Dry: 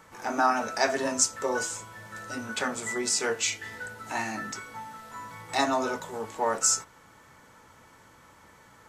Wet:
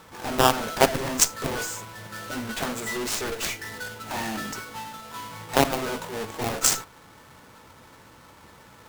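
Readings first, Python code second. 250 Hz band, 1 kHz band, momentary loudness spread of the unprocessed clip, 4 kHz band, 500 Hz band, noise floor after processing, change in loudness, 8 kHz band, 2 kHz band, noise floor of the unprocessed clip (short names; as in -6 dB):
+3.5 dB, +1.5 dB, 17 LU, +4.5 dB, +3.0 dB, -51 dBFS, +2.5 dB, +1.0 dB, +1.0 dB, -56 dBFS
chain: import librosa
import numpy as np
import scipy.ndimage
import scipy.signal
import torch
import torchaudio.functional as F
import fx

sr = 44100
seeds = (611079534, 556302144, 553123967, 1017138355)

y = fx.halfwave_hold(x, sr)
y = fx.cheby_harmonics(y, sr, harmonics=(7, 8), levels_db=(-12, -25), full_scale_db=-7.0)
y = y * librosa.db_to_amplitude(2.5)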